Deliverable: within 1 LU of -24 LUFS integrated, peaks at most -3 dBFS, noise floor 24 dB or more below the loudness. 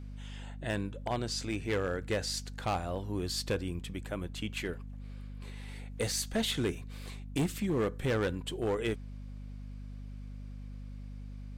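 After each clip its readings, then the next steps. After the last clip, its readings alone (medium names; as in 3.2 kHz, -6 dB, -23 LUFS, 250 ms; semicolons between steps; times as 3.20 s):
clipped samples 1.1%; clipping level -25.0 dBFS; hum 50 Hz; highest harmonic 250 Hz; hum level -41 dBFS; loudness -34.5 LUFS; peak level -25.0 dBFS; loudness target -24.0 LUFS
-> clip repair -25 dBFS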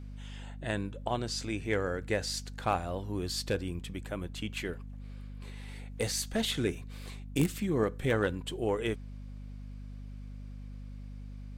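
clipped samples 0.0%; hum 50 Hz; highest harmonic 250 Hz; hum level -41 dBFS
-> hum notches 50/100/150/200/250 Hz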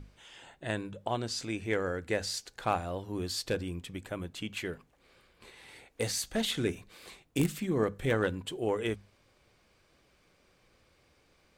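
hum not found; loudness -33.5 LUFS; peak level -15.0 dBFS; loudness target -24.0 LUFS
-> trim +9.5 dB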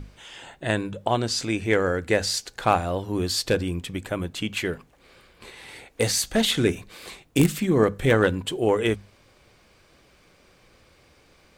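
loudness -24.0 LUFS; peak level -5.5 dBFS; noise floor -58 dBFS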